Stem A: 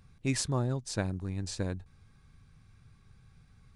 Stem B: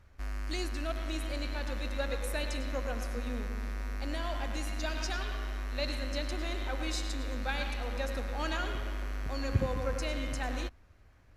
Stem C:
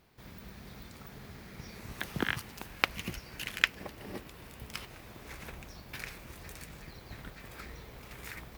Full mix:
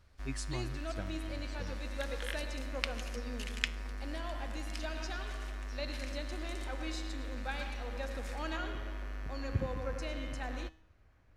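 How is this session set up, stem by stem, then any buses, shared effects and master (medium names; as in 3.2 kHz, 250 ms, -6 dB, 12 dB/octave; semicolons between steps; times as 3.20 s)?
-2.0 dB, 0.00 s, no send, expander on every frequency bin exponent 3
+1.0 dB, 0.00 s, no send, treble shelf 5.7 kHz -7.5 dB
-9.0 dB, 0.00 s, no send, frequency weighting ITU-R 468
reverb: none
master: feedback comb 160 Hz, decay 0.58 s, harmonics all, mix 50%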